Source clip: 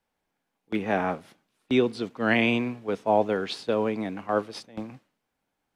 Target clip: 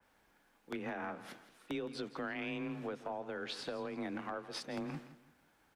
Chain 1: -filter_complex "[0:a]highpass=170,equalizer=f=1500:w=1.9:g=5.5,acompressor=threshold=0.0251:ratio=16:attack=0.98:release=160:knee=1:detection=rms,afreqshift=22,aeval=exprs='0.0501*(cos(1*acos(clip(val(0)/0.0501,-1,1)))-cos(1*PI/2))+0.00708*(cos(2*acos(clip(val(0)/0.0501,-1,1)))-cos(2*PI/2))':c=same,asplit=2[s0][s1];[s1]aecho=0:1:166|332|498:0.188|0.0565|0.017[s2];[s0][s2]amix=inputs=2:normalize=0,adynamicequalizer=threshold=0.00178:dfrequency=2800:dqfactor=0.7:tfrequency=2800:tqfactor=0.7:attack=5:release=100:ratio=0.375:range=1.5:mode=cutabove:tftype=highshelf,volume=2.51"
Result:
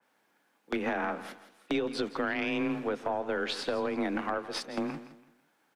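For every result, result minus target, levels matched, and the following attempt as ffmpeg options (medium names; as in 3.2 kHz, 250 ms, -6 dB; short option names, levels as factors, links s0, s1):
compression: peak gain reduction -9.5 dB; 125 Hz band -6.0 dB
-filter_complex "[0:a]highpass=170,equalizer=f=1500:w=1.9:g=5.5,acompressor=threshold=0.00794:ratio=16:attack=0.98:release=160:knee=1:detection=rms,afreqshift=22,aeval=exprs='0.0501*(cos(1*acos(clip(val(0)/0.0501,-1,1)))-cos(1*PI/2))+0.00708*(cos(2*acos(clip(val(0)/0.0501,-1,1)))-cos(2*PI/2))':c=same,asplit=2[s0][s1];[s1]aecho=0:1:166|332|498:0.188|0.0565|0.017[s2];[s0][s2]amix=inputs=2:normalize=0,adynamicequalizer=threshold=0.00178:dfrequency=2800:dqfactor=0.7:tfrequency=2800:tqfactor=0.7:attack=5:release=100:ratio=0.375:range=1.5:mode=cutabove:tftype=highshelf,volume=2.51"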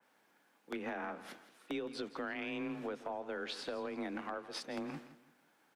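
125 Hz band -6.0 dB
-filter_complex "[0:a]equalizer=f=1500:w=1.9:g=5.5,acompressor=threshold=0.00794:ratio=16:attack=0.98:release=160:knee=1:detection=rms,afreqshift=22,aeval=exprs='0.0501*(cos(1*acos(clip(val(0)/0.0501,-1,1)))-cos(1*PI/2))+0.00708*(cos(2*acos(clip(val(0)/0.0501,-1,1)))-cos(2*PI/2))':c=same,asplit=2[s0][s1];[s1]aecho=0:1:166|332|498:0.188|0.0565|0.017[s2];[s0][s2]amix=inputs=2:normalize=0,adynamicequalizer=threshold=0.00178:dfrequency=2800:dqfactor=0.7:tfrequency=2800:tqfactor=0.7:attack=5:release=100:ratio=0.375:range=1.5:mode=cutabove:tftype=highshelf,volume=2.51"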